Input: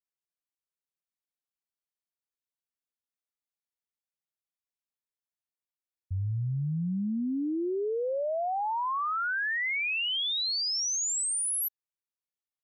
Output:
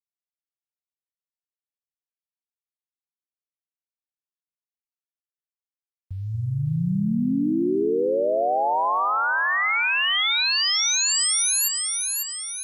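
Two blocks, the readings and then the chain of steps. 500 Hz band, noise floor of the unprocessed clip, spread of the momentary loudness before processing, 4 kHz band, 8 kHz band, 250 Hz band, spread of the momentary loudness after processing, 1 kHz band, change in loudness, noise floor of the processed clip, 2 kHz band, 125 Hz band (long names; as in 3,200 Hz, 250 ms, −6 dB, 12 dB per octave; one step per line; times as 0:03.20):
+8.5 dB, below −85 dBFS, 5 LU, +8.5 dB, +8.5 dB, +8.0 dB, 8 LU, +8.5 dB, +8.0 dB, below −85 dBFS, +8.5 dB, +5.5 dB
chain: parametric band 88 Hz −8.5 dB 0.72 octaves
centre clipping without the shift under −58.5 dBFS
echo with a time of its own for lows and highs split 1,000 Hz, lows 235 ms, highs 548 ms, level −4 dB
level +6.5 dB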